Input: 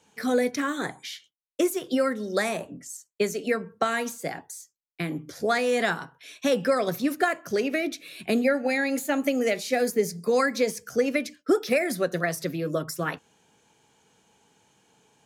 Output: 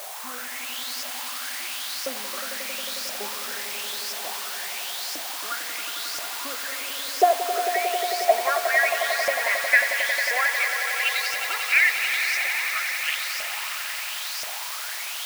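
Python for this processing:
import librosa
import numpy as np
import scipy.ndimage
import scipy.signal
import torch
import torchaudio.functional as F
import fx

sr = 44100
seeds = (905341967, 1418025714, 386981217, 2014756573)

p1 = np.where(x < 0.0, 10.0 ** (-3.0 / 20.0) * x, x)
p2 = fx.filter_sweep_bandpass(p1, sr, from_hz=220.0, to_hz=2300.0, start_s=6.15, end_s=9.92, q=2.9)
p3 = fx.quant_dither(p2, sr, seeds[0], bits=6, dither='triangular')
p4 = p2 + (p3 * librosa.db_to_amplitude(-6.0))
p5 = fx.filter_lfo_highpass(p4, sr, shape='saw_up', hz=0.97, low_hz=600.0, high_hz=5400.0, q=6.1)
p6 = p5 + fx.echo_swell(p5, sr, ms=90, loudest=5, wet_db=-10.0, dry=0)
y = p6 * librosa.db_to_amplitude(4.5)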